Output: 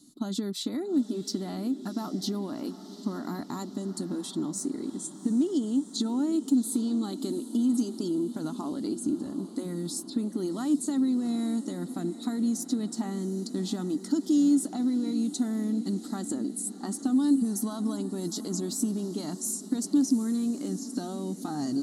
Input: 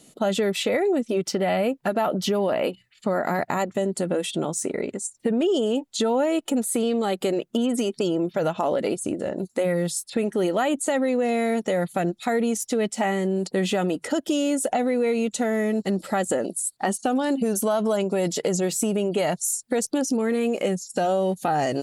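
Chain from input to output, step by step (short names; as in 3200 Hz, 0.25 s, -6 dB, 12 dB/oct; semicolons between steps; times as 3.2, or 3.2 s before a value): EQ curve 170 Hz 0 dB, 290 Hz +12 dB, 510 Hz -17 dB, 1100 Hz -1 dB, 2600 Hz -19 dB, 4000 Hz +7 dB, 7000 Hz +2 dB; diffused feedback echo 0.752 s, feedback 65%, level -14 dB; gain -8.5 dB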